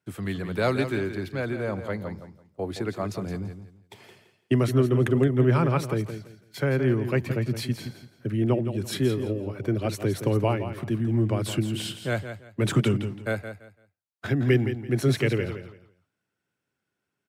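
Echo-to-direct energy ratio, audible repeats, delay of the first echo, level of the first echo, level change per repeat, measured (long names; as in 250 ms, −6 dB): −9.5 dB, 3, 168 ms, −10.0 dB, −12.5 dB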